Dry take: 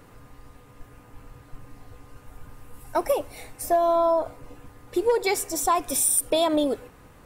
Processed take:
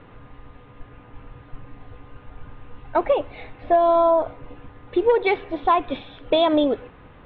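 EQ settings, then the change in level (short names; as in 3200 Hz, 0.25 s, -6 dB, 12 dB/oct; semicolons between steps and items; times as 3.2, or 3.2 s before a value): steep low-pass 3700 Hz 72 dB/oct; +4.0 dB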